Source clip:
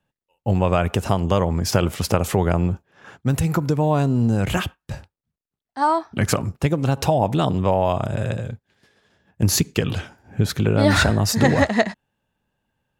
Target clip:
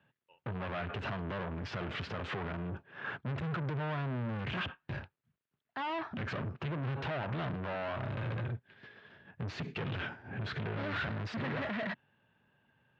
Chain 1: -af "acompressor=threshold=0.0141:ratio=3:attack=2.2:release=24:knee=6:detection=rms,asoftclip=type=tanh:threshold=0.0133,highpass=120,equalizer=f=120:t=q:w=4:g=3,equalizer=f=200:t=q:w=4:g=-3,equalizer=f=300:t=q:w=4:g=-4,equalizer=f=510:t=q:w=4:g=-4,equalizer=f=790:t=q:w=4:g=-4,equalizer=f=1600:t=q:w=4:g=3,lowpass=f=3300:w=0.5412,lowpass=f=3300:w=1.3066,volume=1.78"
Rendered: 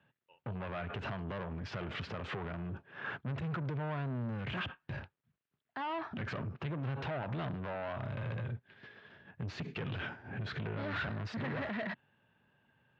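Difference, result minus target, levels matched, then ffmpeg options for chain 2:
compression: peak gain reduction +7 dB
-af "acompressor=threshold=0.0473:ratio=3:attack=2.2:release=24:knee=6:detection=rms,asoftclip=type=tanh:threshold=0.0133,highpass=120,equalizer=f=120:t=q:w=4:g=3,equalizer=f=200:t=q:w=4:g=-3,equalizer=f=300:t=q:w=4:g=-4,equalizer=f=510:t=q:w=4:g=-4,equalizer=f=790:t=q:w=4:g=-4,equalizer=f=1600:t=q:w=4:g=3,lowpass=f=3300:w=0.5412,lowpass=f=3300:w=1.3066,volume=1.78"

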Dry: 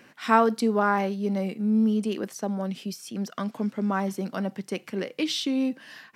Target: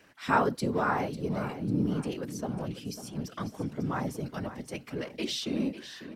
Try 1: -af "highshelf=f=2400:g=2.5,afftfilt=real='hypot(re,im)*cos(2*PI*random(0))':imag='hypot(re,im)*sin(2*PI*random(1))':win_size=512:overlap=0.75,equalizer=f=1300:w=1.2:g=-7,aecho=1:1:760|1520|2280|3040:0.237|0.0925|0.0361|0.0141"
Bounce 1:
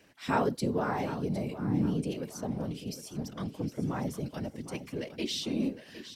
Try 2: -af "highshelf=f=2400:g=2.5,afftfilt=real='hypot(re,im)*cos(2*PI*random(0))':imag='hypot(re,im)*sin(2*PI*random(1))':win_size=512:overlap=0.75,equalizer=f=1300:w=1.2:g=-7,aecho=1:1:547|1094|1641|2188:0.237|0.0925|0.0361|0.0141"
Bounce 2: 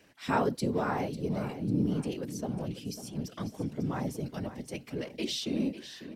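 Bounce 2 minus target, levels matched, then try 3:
1 kHz band -3.0 dB
-af "highshelf=f=2400:g=2.5,afftfilt=real='hypot(re,im)*cos(2*PI*random(0))':imag='hypot(re,im)*sin(2*PI*random(1))':win_size=512:overlap=0.75,aecho=1:1:547|1094|1641|2188:0.237|0.0925|0.0361|0.0141"

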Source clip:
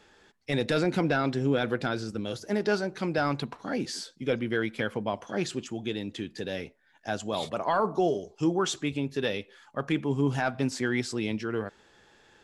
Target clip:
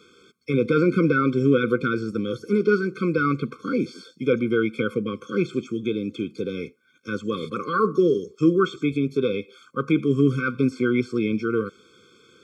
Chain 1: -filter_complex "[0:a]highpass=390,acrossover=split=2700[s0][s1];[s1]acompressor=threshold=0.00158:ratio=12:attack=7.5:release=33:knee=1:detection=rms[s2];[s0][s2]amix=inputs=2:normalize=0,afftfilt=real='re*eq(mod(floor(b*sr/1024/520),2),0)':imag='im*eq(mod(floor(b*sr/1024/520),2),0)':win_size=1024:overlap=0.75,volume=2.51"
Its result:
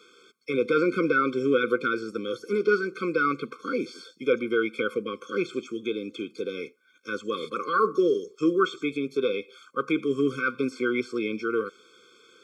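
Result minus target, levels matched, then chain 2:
125 Hz band -11.0 dB
-filter_complex "[0:a]highpass=130,acrossover=split=2700[s0][s1];[s1]acompressor=threshold=0.00158:ratio=12:attack=7.5:release=33:knee=1:detection=rms[s2];[s0][s2]amix=inputs=2:normalize=0,afftfilt=real='re*eq(mod(floor(b*sr/1024/520),2),0)':imag='im*eq(mod(floor(b*sr/1024/520),2),0)':win_size=1024:overlap=0.75,volume=2.51"

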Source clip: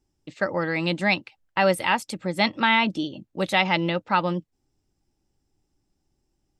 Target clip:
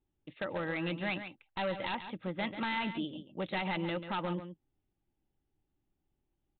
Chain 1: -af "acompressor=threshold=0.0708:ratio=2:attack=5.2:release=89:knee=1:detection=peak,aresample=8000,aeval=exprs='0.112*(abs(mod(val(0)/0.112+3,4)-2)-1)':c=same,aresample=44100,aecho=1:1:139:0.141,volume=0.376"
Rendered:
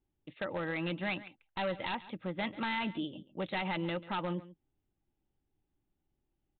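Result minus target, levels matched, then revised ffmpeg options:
echo-to-direct -7 dB
-af "acompressor=threshold=0.0708:ratio=2:attack=5.2:release=89:knee=1:detection=peak,aresample=8000,aeval=exprs='0.112*(abs(mod(val(0)/0.112+3,4)-2)-1)':c=same,aresample=44100,aecho=1:1:139:0.316,volume=0.376"

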